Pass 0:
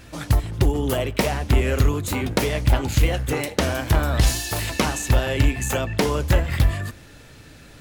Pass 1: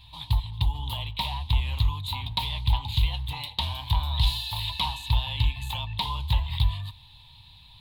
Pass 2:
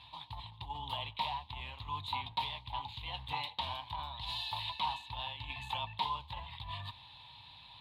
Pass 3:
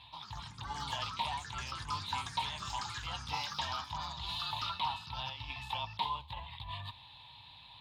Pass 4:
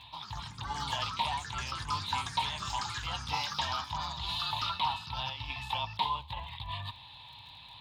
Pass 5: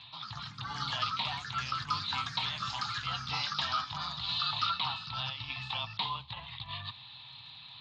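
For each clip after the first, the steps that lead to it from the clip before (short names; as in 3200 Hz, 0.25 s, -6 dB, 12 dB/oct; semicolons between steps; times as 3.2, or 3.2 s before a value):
EQ curve 110 Hz 0 dB, 400 Hz -30 dB, 640 Hz -18 dB, 960 Hz +8 dB, 1400 Hz -24 dB, 3800 Hz +13 dB, 5900 Hz -20 dB, 12000 Hz -7 dB; gain -5 dB
reverse; compressor 6:1, threshold -33 dBFS, peak gain reduction 15 dB; reverse; band-pass 960 Hz, Q 0.53; gain +4.5 dB
echoes that change speed 0.126 s, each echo +5 st, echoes 3, each echo -6 dB
crackle 24/s -52 dBFS; gain +4 dB
speaker cabinet 130–5600 Hz, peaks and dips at 130 Hz +6 dB, 370 Hz -9 dB, 560 Hz -5 dB, 920 Hz -10 dB, 1300 Hz +8 dB, 4300 Hz +5 dB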